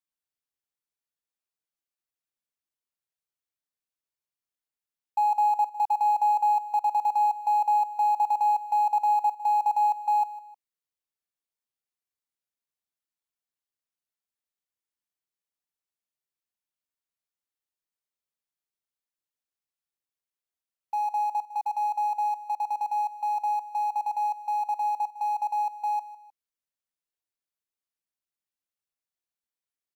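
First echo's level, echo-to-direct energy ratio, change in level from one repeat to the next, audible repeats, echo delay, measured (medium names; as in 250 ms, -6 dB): -16.0 dB, -15.5 dB, -8.5 dB, 2, 154 ms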